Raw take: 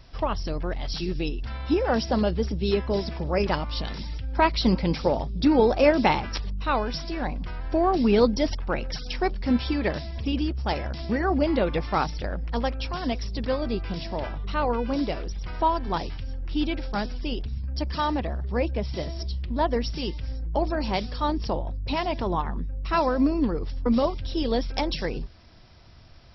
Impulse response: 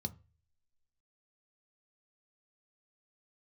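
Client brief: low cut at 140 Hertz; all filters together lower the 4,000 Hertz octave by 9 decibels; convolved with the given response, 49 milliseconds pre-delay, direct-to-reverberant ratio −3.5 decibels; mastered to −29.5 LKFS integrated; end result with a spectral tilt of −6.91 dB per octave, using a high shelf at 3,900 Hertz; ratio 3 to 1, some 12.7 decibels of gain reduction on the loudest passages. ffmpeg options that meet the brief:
-filter_complex "[0:a]highpass=140,highshelf=frequency=3900:gain=-7.5,equalizer=frequency=4000:width_type=o:gain=-7,acompressor=threshold=-33dB:ratio=3,asplit=2[link_01][link_02];[1:a]atrim=start_sample=2205,adelay=49[link_03];[link_02][link_03]afir=irnorm=-1:irlink=0,volume=5dB[link_04];[link_01][link_04]amix=inputs=2:normalize=0,volume=-3.5dB"

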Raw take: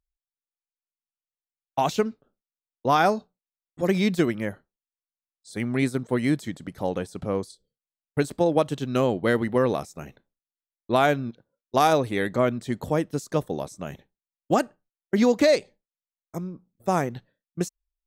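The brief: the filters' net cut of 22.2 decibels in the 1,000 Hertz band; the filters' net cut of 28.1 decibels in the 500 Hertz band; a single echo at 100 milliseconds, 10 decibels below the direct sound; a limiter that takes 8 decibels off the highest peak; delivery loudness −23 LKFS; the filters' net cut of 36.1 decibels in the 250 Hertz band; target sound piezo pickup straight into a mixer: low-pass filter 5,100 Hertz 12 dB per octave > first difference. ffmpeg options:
ffmpeg -i in.wav -af "equalizer=frequency=250:width_type=o:gain=-8.5,equalizer=frequency=500:width_type=o:gain=-4,equalizer=frequency=1000:width_type=o:gain=-4,alimiter=limit=-18.5dB:level=0:latency=1,lowpass=5100,aderivative,aecho=1:1:100:0.316,volume=24.5dB" out.wav

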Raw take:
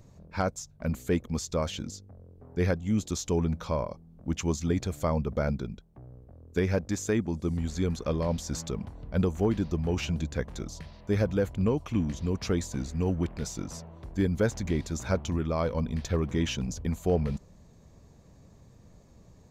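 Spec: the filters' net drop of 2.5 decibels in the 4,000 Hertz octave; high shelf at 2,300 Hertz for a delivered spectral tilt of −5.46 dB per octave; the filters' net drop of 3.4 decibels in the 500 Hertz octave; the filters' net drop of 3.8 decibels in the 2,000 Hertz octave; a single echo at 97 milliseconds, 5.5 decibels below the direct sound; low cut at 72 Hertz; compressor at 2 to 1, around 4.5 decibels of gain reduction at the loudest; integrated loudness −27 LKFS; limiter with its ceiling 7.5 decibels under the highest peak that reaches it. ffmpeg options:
ffmpeg -i in.wav -af "highpass=72,equalizer=frequency=500:width_type=o:gain=-4,equalizer=frequency=2000:width_type=o:gain=-5.5,highshelf=frequency=2300:gain=3.5,equalizer=frequency=4000:width_type=o:gain=-5,acompressor=threshold=-31dB:ratio=2,alimiter=level_in=1.5dB:limit=-24dB:level=0:latency=1,volume=-1.5dB,aecho=1:1:97:0.531,volume=9dB" out.wav

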